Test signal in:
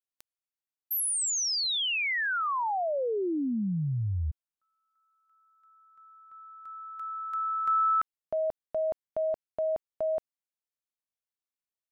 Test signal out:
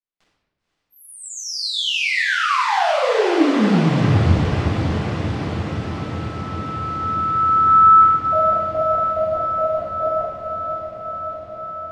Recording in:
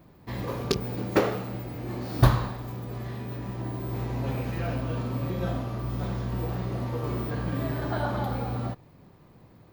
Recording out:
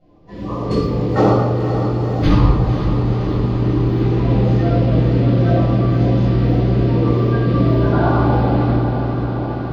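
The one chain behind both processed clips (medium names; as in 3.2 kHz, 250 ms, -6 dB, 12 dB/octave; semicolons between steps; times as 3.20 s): coarse spectral quantiser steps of 30 dB; level rider gain up to 7.5 dB; distance through air 120 m; echo that smears into a reverb 513 ms, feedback 78%, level -8 dB; simulated room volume 630 m³, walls mixed, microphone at 7 m; trim -10 dB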